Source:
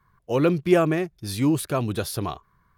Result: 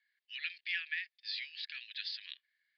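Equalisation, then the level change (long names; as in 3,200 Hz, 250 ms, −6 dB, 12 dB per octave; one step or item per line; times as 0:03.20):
Chebyshev band-pass filter 1,700–4,900 Hz, order 5
high-frequency loss of the air 52 metres
high-shelf EQ 3,900 Hz +7.5 dB
−3.0 dB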